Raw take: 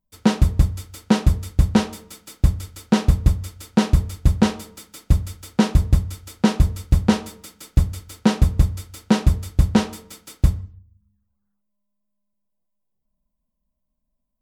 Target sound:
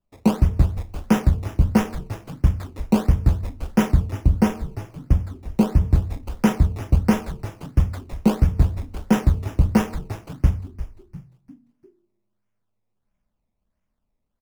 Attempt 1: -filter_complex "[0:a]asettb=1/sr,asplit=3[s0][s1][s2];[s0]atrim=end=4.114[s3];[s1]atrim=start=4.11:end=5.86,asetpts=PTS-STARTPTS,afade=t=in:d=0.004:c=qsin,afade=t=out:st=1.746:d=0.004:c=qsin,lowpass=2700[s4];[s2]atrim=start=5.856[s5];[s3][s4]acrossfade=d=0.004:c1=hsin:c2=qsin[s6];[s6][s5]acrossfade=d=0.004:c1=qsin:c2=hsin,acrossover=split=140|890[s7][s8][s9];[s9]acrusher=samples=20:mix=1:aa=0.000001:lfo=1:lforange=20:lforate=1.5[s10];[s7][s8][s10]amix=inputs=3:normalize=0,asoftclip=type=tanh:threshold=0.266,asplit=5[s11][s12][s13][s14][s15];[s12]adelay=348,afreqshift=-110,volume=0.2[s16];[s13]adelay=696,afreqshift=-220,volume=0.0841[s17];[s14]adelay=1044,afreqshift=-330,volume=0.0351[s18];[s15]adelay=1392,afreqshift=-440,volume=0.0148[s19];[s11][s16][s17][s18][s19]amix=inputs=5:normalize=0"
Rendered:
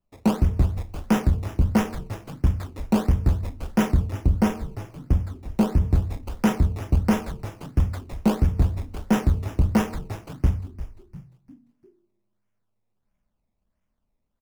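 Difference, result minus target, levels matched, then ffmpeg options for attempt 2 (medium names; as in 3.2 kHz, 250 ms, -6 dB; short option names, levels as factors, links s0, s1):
saturation: distortion +10 dB
-filter_complex "[0:a]asettb=1/sr,asplit=3[s0][s1][s2];[s0]atrim=end=4.114[s3];[s1]atrim=start=4.11:end=5.86,asetpts=PTS-STARTPTS,afade=t=in:d=0.004:c=qsin,afade=t=out:st=1.746:d=0.004:c=qsin,lowpass=2700[s4];[s2]atrim=start=5.856[s5];[s3][s4]acrossfade=d=0.004:c1=hsin:c2=qsin[s6];[s6][s5]acrossfade=d=0.004:c1=qsin:c2=hsin,acrossover=split=140|890[s7][s8][s9];[s9]acrusher=samples=20:mix=1:aa=0.000001:lfo=1:lforange=20:lforate=1.5[s10];[s7][s8][s10]amix=inputs=3:normalize=0,asoftclip=type=tanh:threshold=0.668,asplit=5[s11][s12][s13][s14][s15];[s12]adelay=348,afreqshift=-110,volume=0.2[s16];[s13]adelay=696,afreqshift=-220,volume=0.0841[s17];[s14]adelay=1044,afreqshift=-330,volume=0.0351[s18];[s15]adelay=1392,afreqshift=-440,volume=0.0148[s19];[s11][s16][s17][s18][s19]amix=inputs=5:normalize=0"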